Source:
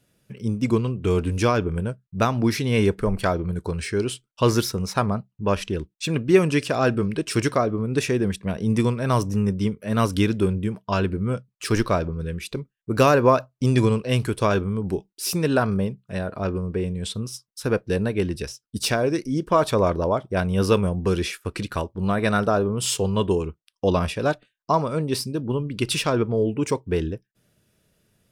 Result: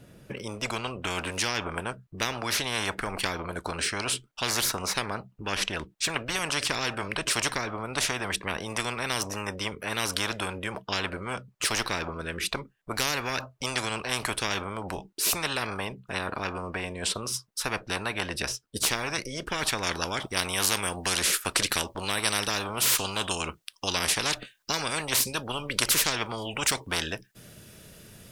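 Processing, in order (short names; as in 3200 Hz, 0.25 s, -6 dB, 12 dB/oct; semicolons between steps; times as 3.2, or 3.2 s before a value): high shelf 2200 Hz -10 dB, from 19.83 s +3 dB; spectral compressor 10:1; gain +1 dB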